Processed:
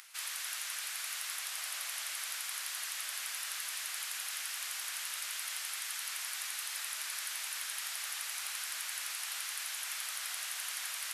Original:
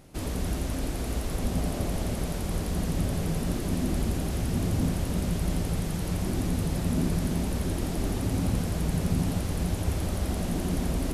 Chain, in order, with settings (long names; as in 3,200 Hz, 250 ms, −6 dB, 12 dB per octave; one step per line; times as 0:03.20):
upward compression, threshold −43 dBFS
high-pass filter 1,400 Hz 24 dB per octave
level +3.5 dB